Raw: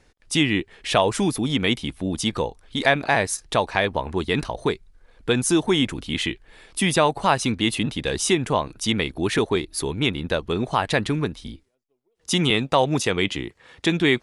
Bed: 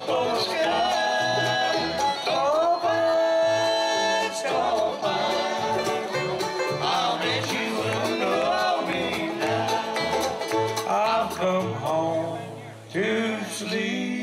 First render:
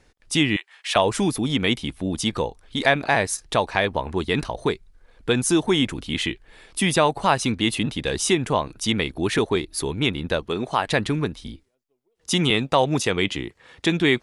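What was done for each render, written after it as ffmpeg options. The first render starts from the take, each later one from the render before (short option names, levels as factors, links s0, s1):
-filter_complex "[0:a]asettb=1/sr,asplit=3[s0][s1][s2];[s0]atrim=end=0.564[s3];[s1]atrim=start=0.56:end=0.96,asetpts=PTS-STARTPTS,afade=t=in:d=0.004:c=qsin,afade=t=out:st=0.396:d=0.004:c=qsin,highpass=f=850:w=0.5412,highpass=f=850:w=1.3066[s4];[s2]atrim=start=0.956[s5];[s3][s4]acrossfade=d=0.004:c1=hsin:c2=qsin[s6];[s6][s5]acrossfade=d=0.004:c1=qsin:c2=hsin,asettb=1/sr,asplit=3[s7][s8][s9];[s7]atrim=end=10.434[s10];[s8]atrim=start=10.43:end=10.87,asetpts=PTS-STARTPTS,afade=t=in:d=0.004:c=qsin,afade=t=out:st=0.436:d=0.004:c=qsin,lowshelf=f=130:g=-11.5[s11];[s9]atrim=start=10.866[s12];[s10][s11]acrossfade=d=0.004:c1=hsin:c2=qsin[s13];[s13][s12]acrossfade=d=0.004:c1=qsin:c2=hsin"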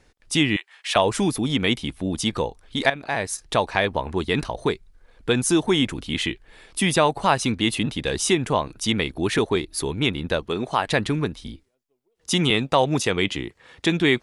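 -filter_complex "[0:a]asplit=2[s0][s1];[s0]atrim=end=2.9,asetpts=PTS-STARTPTS,afade=t=out:st=2.896:d=0.004:c=hsin:silence=0.223872[s2];[s1]atrim=start=2.9,asetpts=PTS-STARTPTS,afade=t=in:d=0.63:silence=0.223872[s3];[s2][s3]concat=n=2:v=0:a=1"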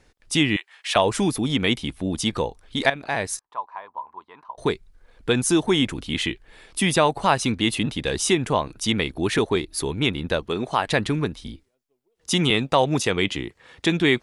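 -filter_complex "[0:a]asettb=1/sr,asplit=3[s0][s1][s2];[s0]atrim=end=3.394[s3];[s1]atrim=start=3.39:end=4.58,asetpts=PTS-STARTPTS,afade=t=in:d=0.004:c=qsin,afade=t=out:st=1.186:d=0.004:c=qsin,bandpass=f=1000:t=q:w=9.7[s4];[s2]atrim=start=4.576[s5];[s3][s4]acrossfade=d=0.004:c1=hsin:c2=qsin[s6];[s6][s5]acrossfade=d=0.004:c1=qsin:c2=hsin"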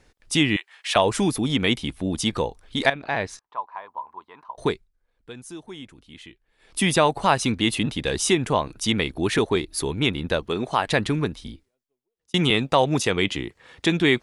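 -filter_complex "[0:a]asettb=1/sr,asplit=3[s0][s1][s2];[s0]atrim=end=2.934[s3];[s1]atrim=start=2.93:end=3.75,asetpts=PTS-STARTPTS,afade=t=in:d=0.004:c=qsin,afade=t=out:st=0.816:d=0.004:c=qsin,lowpass=4200[s4];[s2]atrim=start=3.746[s5];[s3][s4]acrossfade=d=0.004:c1=hsin:c2=qsin[s6];[s6][s5]acrossfade=d=0.004:c1=qsin:c2=hsin,asplit=4[s7][s8][s9][s10];[s7]atrim=end=4.88,asetpts=PTS-STARTPTS,afade=t=out:st=4.67:d=0.21:silence=0.112202[s11];[s8]atrim=start=4.88:end=6.58,asetpts=PTS-STARTPTS,volume=0.112[s12];[s9]atrim=start=6.58:end=12.34,asetpts=PTS-STARTPTS,afade=t=in:d=0.21:silence=0.112202,afade=t=out:st=4.76:d=1[s13];[s10]atrim=start=12.34,asetpts=PTS-STARTPTS,afade=t=in:d=0.004:c=hsin[s14];[s11][s12][s13][s14]concat=n=4:v=0:a=1"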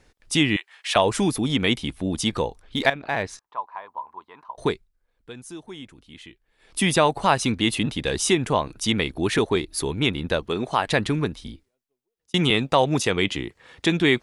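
-filter_complex "[0:a]asettb=1/sr,asplit=3[s0][s1][s2];[s0]atrim=end=2.624[s3];[s1]atrim=start=2.62:end=3.23,asetpts=PTS-STARTPTS,afade=t=in:d=0.004:c=qsin,afade=t=out:st=0.606:d=0.004:c=qsin,adynamicsmooth=sensitivity=6:basefreq=6200[s4];[s2]atrim=start=3.226[s5];[s3][s4]acrossfade=d=0.004:c1=hsin:c2=qsin[s6];[s6][s5]acrossfade=d=0.004:c1=qsin:c2=hsin"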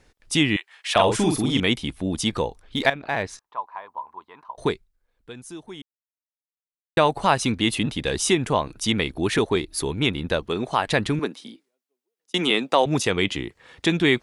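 -filter_complex "[0:a]asettb=1/sr,asplit=3[s0][s1][s2];[s0]atrim=end=0.934[s3];[s1]atrim=start=0.93:end=1.6,asetpts=PTS-STARTPTS,afade=t=in:d=0.004:c=qsin,afade=t=out:st=0.666:d=0.004:c=qsin,asplit=2[s4][s5];[s5]adelay=43,volume=0.631[s6];[s4][s6]amix=inputs=2:normalize=0,atrim=end_sample=29547[s7];[s2]atrim=start=1.596[s8];[s3][s7]acrossfade=d=0.004:c1=hsin:c2=qsin[s9];[s9][s8]acrossfade=d=0.004:c1=qsin:c2=hsin,asettb=1/sr,asplit=3[s10][s11][s12];[s10]atrim=end=11.194[s13];[s11]atrim=start=11.19:end=12.86,asetpts=PTS-STARTPTS,afade=t=in:d=0.004:c=qsin,afade=t=out:st=1.666:d=0.004:c=qsin,highpass=f=220:w=0.5412,highpass=f=220:w=1.3066[s14];[s12]atrim=start=12.856[s15];[s13][s14]acrossfade=d=0.004:c1=hsin:c2=qsin[s16];[s16][s15]acrossfade=d=0.004:c1=qsin:c2=hsin,asplit=3[s17][s18][s19];[s17]atrim=end=5.82,asetpts=PTS-STARTPTS,afade=t=out:st=5.816:d=0.004:c=hsin[s20];[s18]atrim=start=5.82:end=6.97,asetpts=PTS-STARTPTS,volume=0[s21];[s19]atrim=start=6.97,asetpts=PTS-STARTPTS,afade=t=in:d=0.004:c=hsin[s22];[s20][s21][s22]concat=n=3:v=0:a=1"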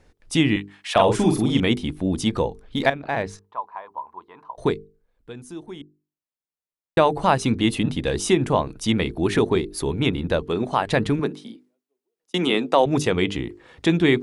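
-af "tiltshelf=f=1100:g=4,bandreject=f=50:t=h:w=6,bandreject=f=100:t=h:w=6,bandreject=f=150:t=h:w=6,bandreject=f=200:t=h:w=6,bandreject=f=250:t=h:w=6,bandreject=f=300:t=h:w=6,bandreject=f=350:t=h:w=6,bandreject=f=400:t=h:w=6,bandreject=f=450:t=h:w=6"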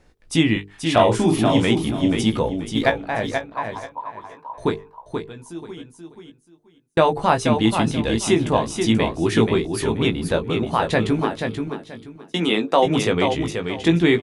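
-filter_complex "[0:a]asplit=2[s0][s1];[s1]adelay=18,volume=0.473[s2];[s0][s2]amix=inputs=2:normalize=0,aecho=1:1:482|964|1446:0.501|0.115|0.0265"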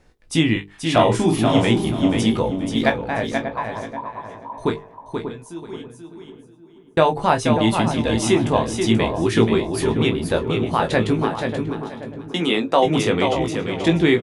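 -filter_complex "[0:a]asplit=2[s0][s1];[s1]adelay=26,volume=0.251[s2];[s0][s2]amix=inputs=2:normalize=0,asplit=2[s3][s4];[s4]adelay=588,lowpass=f=970:p=1,volume=0.398,asplit=2[s5][s6];[s6]adelay=588,lowpass=f=970:p=1,volume=0.28,asplit=2[s7][s8];[s8]adelay=588,lowpass=f=970:p=1,volume=0.28[s9];[s3][s5][s7][s9]amix=inputs=4:normalize=0"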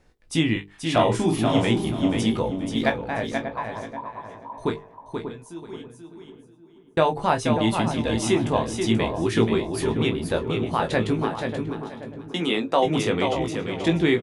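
-af "volume=0.631"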